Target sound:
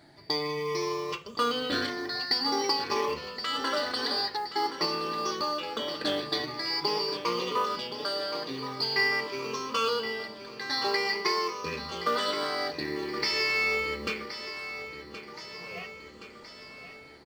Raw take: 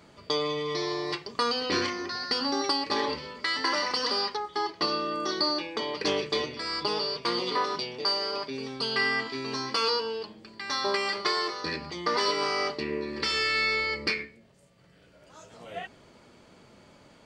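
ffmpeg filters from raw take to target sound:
ffmpeg -i in.wav -af "afftfilt=real='re*pow(10,13/40*sin(2*PI*(0.79*log(max(b,1)*sr/1024/100)/log(2)-(0.47)*(pts-256)/sr)))':imag='im*pow(10,13/40*sin(2*PI*(0.79*log(max(b,1)*sr/1024/100)/log(2)-(0.47)*(pts-256)/sr)))':win_size=1024:overlap=0.75,acrusher=bits=7:mode=log:mix=0:aa=0.000001,aecho=1:1:1072|2144|3216|4288|5360|6432|7504:0.266|0.154|0.0895|0.0519|0.0301|0.0175|0.0101,volume=-3.5dB" out.wav

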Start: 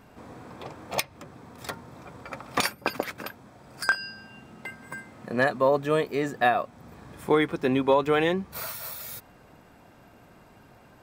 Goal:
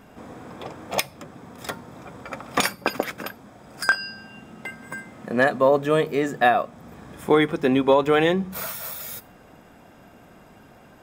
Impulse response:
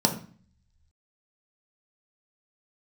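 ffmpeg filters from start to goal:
-filter_complex "[0:a]asplit=2[link_01][link_02];[1:a]atrim=start_sample=2205,asetrate=37485,aresample=44100,highshelf=frequency=2700:gain=11[link_03];[link_02][link_03]afir=irnorm=-1:irlink=0,volume=-30.5dB[link_04];[link_01][link_04]amix=inputs=2:normalize=0,volume=3dB"

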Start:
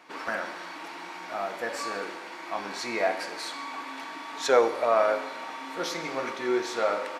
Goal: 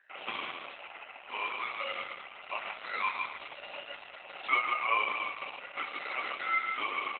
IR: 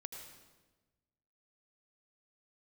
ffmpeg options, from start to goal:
-filter_complex "[0:a]afwtdn=0.0126,equalizer=frequency=3600:width_type=o:width=1.9:gain=-13.5,aecho=1:1:147|294|441|588:0.531|0.143|0.0387|0.0104,acompressor=threshold=-30dB:ratio=2,aeval=exprs='val(0)+0.000794*(sin(2*PI*60*n/s)+sin(2*PI*2*60*n/s)/2+sin(2*PI*3*60*n/s)/3+sin(2*PI*4*60*n/s)/4+sin(2*PI*5*60*n/s)/5)':channel_layout=same,flanger=delay=9.9:depth=8.1:regen=64:speed=0.88:shape=sinusoidal,aeval=exprs='val(0)*sin(2*PI*1700*n/s)':channel_layout=same,asplit=2[link_01][link_02];[1:a]atrim=start_sample=2205,lowpass=4600[link_03];[link_02][link_03]afir=irnorm=-1:irlink=0,volume=-12dB[link_04];[link_01][link_04]amix=inputs=2:normalize=0,acontrast=77,highpass=380,lowpass=6600" -ar 48000 -c:a libopus -b:a 8k

